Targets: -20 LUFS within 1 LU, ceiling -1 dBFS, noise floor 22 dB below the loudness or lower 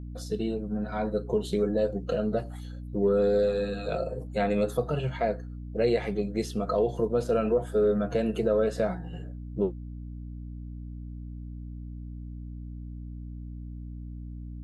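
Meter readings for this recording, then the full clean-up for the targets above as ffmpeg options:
hum 60 Hz; harmonics up to 300 Hz; hum level -36 dBFS; loudness -28.0 LUFS; peak -13.5 dBFS; loudness target -20.0 LUFS
-> -af "bandreject=f=60:t=h:w=4,bandreject=f=120:t=h:w=4,bandreject=f=180:t=h:w=4,bandreject=f=240:t=h:w=4,bandreject=f=300:t=h:w=4"
-af "volume=8dB"

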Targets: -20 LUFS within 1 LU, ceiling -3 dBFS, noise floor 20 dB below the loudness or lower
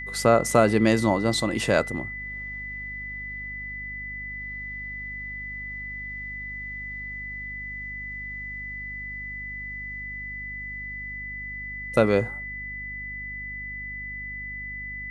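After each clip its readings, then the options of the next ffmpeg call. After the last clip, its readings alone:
hum 50 Hz; harmonics up to 250 Hz; hum level -40 dBFS; steady tone 2000 Hz; tone level -33 dBFS; loudness -28.5 LUFS; peak -4.5 dBFS; loudness target -20.0 LUFS
-> -af "bandreject=f=50:t=h:w=6,bandreject=f=100:t=h:w=6,bandreject=f=150:t=h:w=6,bandreject=f=200:t=h:w=6,bandreject=f=250:t=h:w=6"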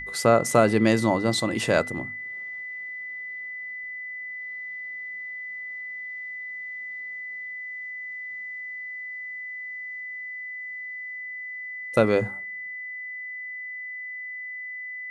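hum none; steady tone 2000 Hz; tone level -33 dBFS
-> -af "bandreject=f=2k:w=30"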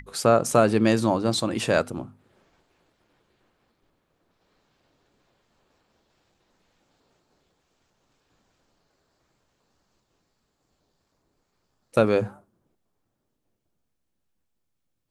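steady tone none; loudness -22.5 LUFS; peak -4.5 dBFS; loudness target -20.0 LUFS
-> -af "volume=2.5dB,alimiter=limit=-3dB:level=0:latency=1"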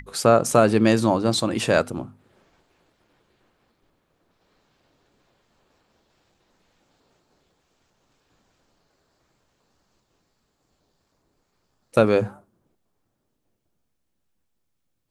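loudness -20.5 LUFS; peak -3.0 dBFS; noise floor -74 dBFS

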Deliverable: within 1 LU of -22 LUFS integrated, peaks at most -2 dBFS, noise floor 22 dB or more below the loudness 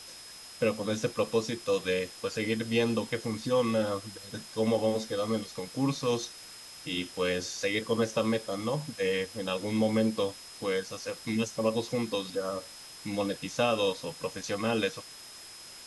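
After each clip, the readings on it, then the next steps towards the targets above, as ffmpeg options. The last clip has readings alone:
steady tone 5100 Hz; tone level -48 dBFS; noise floor -48 dBFS; noise floor target -53 dBFS; loudness -31.0 LUFS; peak -14.0 dBFS; loudness target -22.0 LUFS
-> -af "bandreject=f=5.1k:w=30"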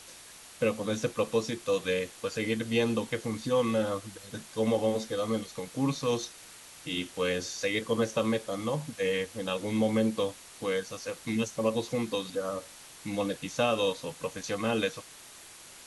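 steady tone none; noise floor -50 dBFS; noise floor target -53 dBFS
-> -af "afftdn=nr=6:nf=-50"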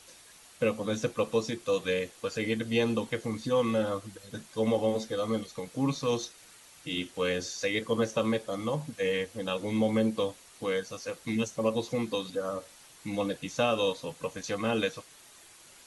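noise floor -55 dBFS; loudness -31.0 LUFS; peak -14.0 dBFS; loudness target -22.0 LUFS
-> -af "volume=9dB"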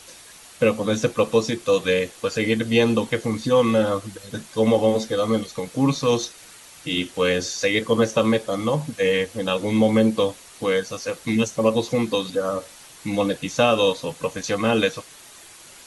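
loudness -22.0 LUFS; peak -5.0 dBFS; noise floor -46 dBFS

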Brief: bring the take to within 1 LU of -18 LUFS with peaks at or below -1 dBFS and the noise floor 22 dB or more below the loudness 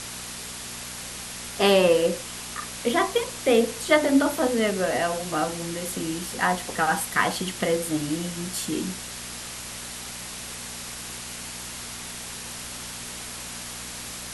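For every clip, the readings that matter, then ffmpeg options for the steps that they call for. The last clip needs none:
hum 60 Hz; harmonics up to 240 Hz; hum level -44 dBFS; noise floor -37 dBFS; noise floor target -49 dBFS; loudness -26.5 LUFS; peak -6.5 dBFS; loudness target -18.0 LUFS
-> -af "bandreject=f=60:t=h:w=4,bandreject=f=120:t=h:w=4,bandreject=f=180:t=h:w=4,bandreject=f=240:t=h:w=4"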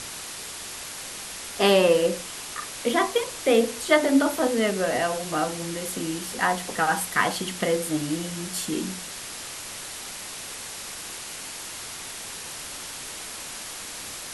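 hum none; noise floor -37 dBFS; noise floor target -49 dBFS
-> -af "afftdn=nr=12:nf=-37"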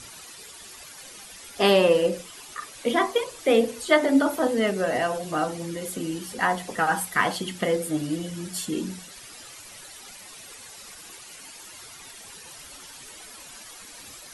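noise floor -45 dBFS; noise floor target -47 dBFS
-> -af "afftdn=nr=6:nf=-45"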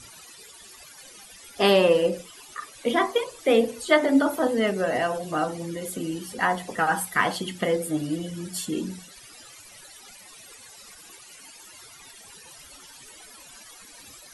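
noise floor -48 dBFS; loudness -24.5 LUFS; peak -6.5 dBFS; loudness target -18.0 LUFS
-> -af "volume=6.5dB,alimiter=limit=-1dB:level=0:latency=1"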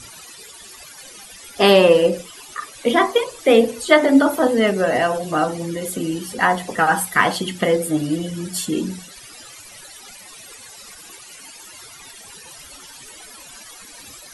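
loudness -18.0 LUFS; peak -1.0 dBFS; noise floor -42 dBFS

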